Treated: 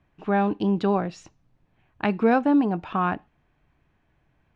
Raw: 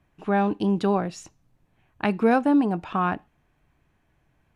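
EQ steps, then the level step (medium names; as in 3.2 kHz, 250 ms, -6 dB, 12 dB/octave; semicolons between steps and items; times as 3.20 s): low-pass 4.8 kHz 12 dB/octave; 0.0 dB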